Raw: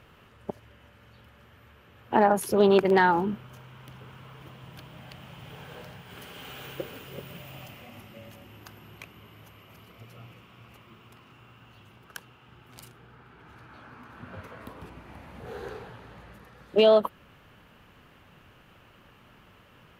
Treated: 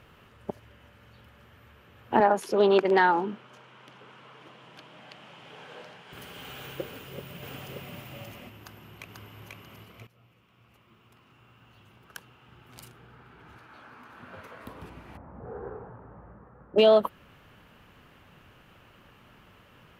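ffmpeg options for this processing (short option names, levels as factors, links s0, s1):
-filter_complex "[0:a]asettb=1/sr,asplit=3[s0][s1][s2];[s0]atrim=end=2.204[s3];[s1]atrim=start=2.2:end=6.13,asetpts=PTS-STARTPTS,afade=t=in:d=0.004:c=qsin,afade=t=out:st=3.926:d=0.004:c=qsin,highpass=270,lowpass=6800[s4];[s2]atrim=start=6.126[s5];[s3][s4]acrossfade=d=0.004:c1=hsin:c2=qsin[s6];[s6][s5]acrossfade=d=0.004:c1=qsin:c2=hsin,asplit=2[s7][s8];[s8]afade=t=in:st=6.84:d=0.01,afade=t=out:st=7.91:d=0.01,aecho=0:1:580|1160:0.891251|0.0891251[s9];[s7][s9]amix=inputs=2:normalize=0,asplit=2[s10][s11];[s11]afade=t=in:st=8.59:d=0.01,afade=t=out:st=9.34:d=0.01,aecho=0:1:490|980|1470|1960:0.841395|0.252419|0.0757256|0.0227177[s12];[s10][s12]amix=inputs=2:normalize=0,asettb=1/sr,asplit=3[s13][s14][s15];[s13]atrim=end=13.584[s16];[s14]atrim=start=13.58:end=14.66,asetpts=PTS-STARTPTS,afade=t=in:d=0.004:c=qsin,afade=t=out:st=1.076:d=0.004:c=qsin,lowshelf=f=200:g=-11[s17];[s15]atrim=start=14.656[s18];[s16][s17]acrossfade=d=0.004:c1=hsin:c2=qsin[s19];[s19][s18]acrossfade=d=0.004:c1=qsin:c2=hsin,asettb=1/sr,asplit=3[s20][s21][s22];[s20]atrim=end=15.174[s23];[s21]atrim=start=15.17:end=16.78,asetpts=PTS-STARTPTS,afade=t=in:d=0.004:c=qsin,afade=t=out:st=1.606:d=0.004:c=qsin,lowpass=f=1300:w=0.5412,lowpass=f=1300:w=1.3066[s24];[s22]atrim=start=16.776[s25];[s23][s24]acrossfade=d=0.004:c1=hsin:c2=qsin[s26];[s26][s25]acrossfade=d=0.004:c1=qsin:c2=hsin,asplit=2[s27][s28];[s27]atrim=end=10.07,asetpts=PTS-STARTPTS,afade=t=out:st=10.066:d=0.004:c=hsin:silence=0.158489[s29];[s28]atrim=start=10.07,asetpts=PTS-STARTPTS,afade=t=in:d=2.76:silence=0.158489[s30];[s29][s30]concat=n=2:v=0:a=1"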